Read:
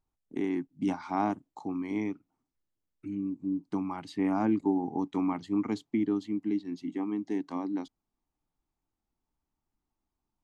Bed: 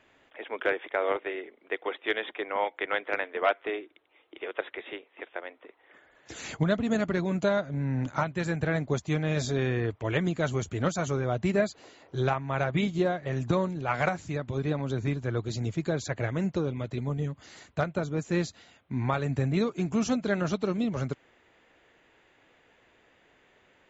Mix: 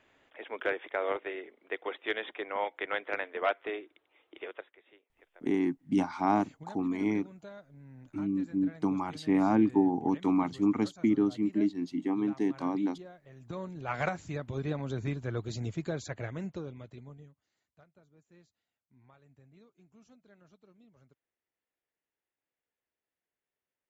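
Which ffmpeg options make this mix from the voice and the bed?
ffmpeg -i stem1.wav -i stem2.wav -filter_complex "[0:a]adelay=5100,volume=2.5dB[link_01];[1:a]volume=13.5dB,afade=type=out:start_time=4.43:duration=0.24:silence=0.125893,afade=type=in:start_time=13.4:duration=0.61:silence=0.133352,afade=type=out:start_time=15.69:duration=1.72:silence=0.0375837[link_02];[link_01][link_02]amix=inputs=2:normalize=0" out.wav

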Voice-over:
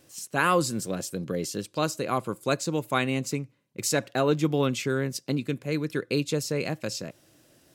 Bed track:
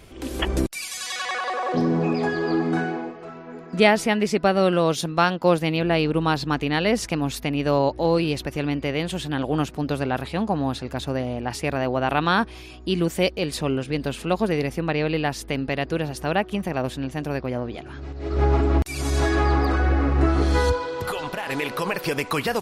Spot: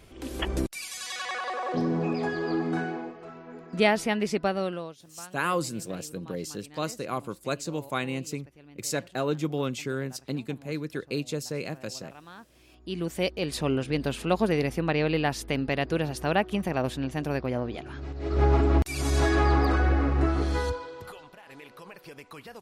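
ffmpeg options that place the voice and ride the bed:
ffmpeg -i stem1.wav -i stem2.wav -filter_complex "[0:a]adelay=5000,volume=-4.5dB[link_01];[1:a]volume=19.5dB,afade=type=out:start_time=4.35:duration=0.6:silence=0.0841395,afade=type=in:start_time=12.49:duration=1.26:silence=0.0562341,afade=type=out:start_time=19.74:duration=1.53:silence=0.11885[link_02];[link_01][link_02]amix=inputs=2:normalize=0" out.wav

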